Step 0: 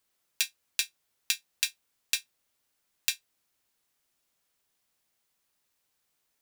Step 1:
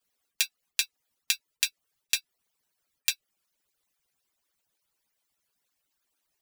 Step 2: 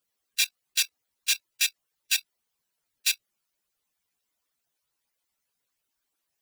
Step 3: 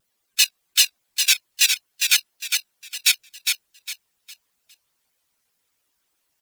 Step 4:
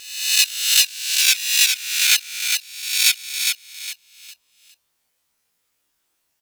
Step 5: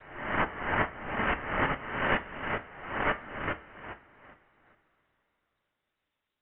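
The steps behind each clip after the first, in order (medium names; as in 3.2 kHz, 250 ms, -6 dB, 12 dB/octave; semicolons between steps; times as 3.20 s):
harmonic-percussive separation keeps percussive; trim +2 dB
phase randomisation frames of 50 ms; level held to a coarse grid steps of 15 dB; trim +8.5 dB
on a send: feedback delay 407 ms, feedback 30%, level -5 dB; on the sum: vibrato with a chosen wave saw down 5.1 Hz, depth 160 cents; trim +7.5 dB
reverse spectral sustain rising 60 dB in 0.83 s; trim -1.5 dB
noise-vocoded speech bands 6; frequency inversion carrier 3.9 kHz; two-slope reverb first 0.3 s, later 4 s, from -22 dB, DRR 8 dB; trim -7.5 dB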